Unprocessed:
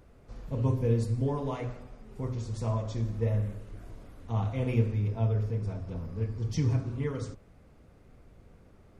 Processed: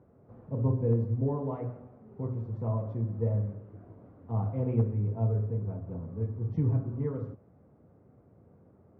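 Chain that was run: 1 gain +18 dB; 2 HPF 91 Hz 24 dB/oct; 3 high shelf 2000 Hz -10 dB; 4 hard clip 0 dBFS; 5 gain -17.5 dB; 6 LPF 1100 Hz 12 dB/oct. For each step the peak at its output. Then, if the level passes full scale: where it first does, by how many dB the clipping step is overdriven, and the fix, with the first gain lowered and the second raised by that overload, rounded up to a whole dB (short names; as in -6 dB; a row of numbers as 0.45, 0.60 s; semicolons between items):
+5.0, +3.0, +3.0, 0.0, -17.5, -17.0 dBFS; step 1, 3.0 dB; step 1 +15 dB, step 5 -14.5 dB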